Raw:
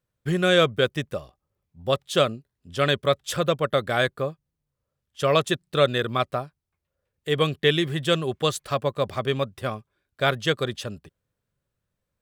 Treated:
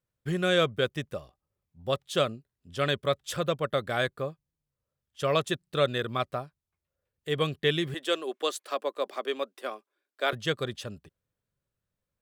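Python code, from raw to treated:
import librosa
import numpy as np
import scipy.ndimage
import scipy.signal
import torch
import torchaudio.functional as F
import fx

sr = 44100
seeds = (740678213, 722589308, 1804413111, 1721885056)

y = fx.steep_highpass(x, sr, hz=280.0, slope=36, at=(7.94, 10.33))
y = y * 10.0 ** (-5.5 / 20.0)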